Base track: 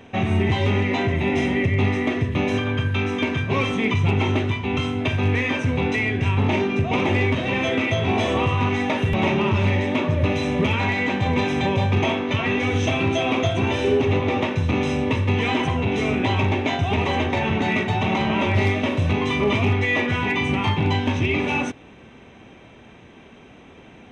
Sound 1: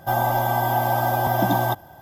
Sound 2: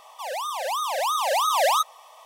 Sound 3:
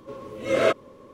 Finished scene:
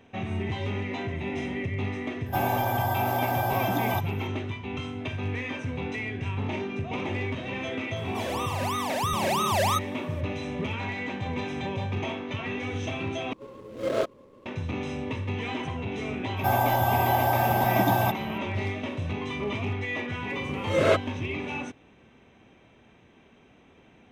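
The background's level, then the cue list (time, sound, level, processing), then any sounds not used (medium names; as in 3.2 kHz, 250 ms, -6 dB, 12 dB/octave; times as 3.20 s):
base track -10.5 dB
2.26 s: add 1 -17 dB + loudness maximiser +13.5 dB
7.96 s: add 2 -4.5 dB
13.33 s: replace with 3 -4.5 dB + median filter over 25 samples
16.37 s: add 1 -2.5 dB
20.24 s: add 3 -1 dB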